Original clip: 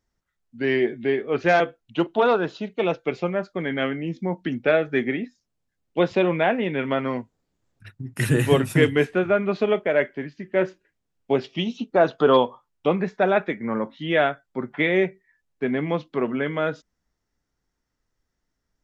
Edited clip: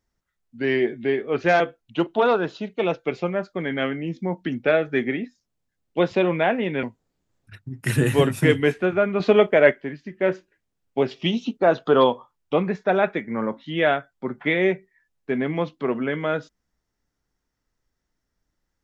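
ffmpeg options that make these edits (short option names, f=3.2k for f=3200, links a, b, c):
-filter_complex "[0:a]asplit=6[a][b][c][d][e][f];[a]atrim=end=6.832[g];[b]atrim=start=7.158:end=9.532[h];[c]atrim=start=9.528:end=10.042,asetpts=PTS-STARTPTS,volume=5.5dB[i];[d]atrim=start=10.038:end=11.462[j];[e]atrim=start=11.458:end=11.902,asetpts=PTS-STARTPTS,volume=3dB[k];[f]atrim=start=11.898[l];[g][h]acrossfade=d=0.004:c1=hsin:c2=hsin[m];[m][i]acrossfade=d=0.004:c1=hsin:c2=hsin[n];[n][j]acrossfade=d=0.004:c1=hsin:c2=hsin[o];[o][k]acrossfade=d=0.004:c1=hsin:c2=hsin[p];[p][l]acrossfade=d=0.004:c1=hsin:c2=hsin"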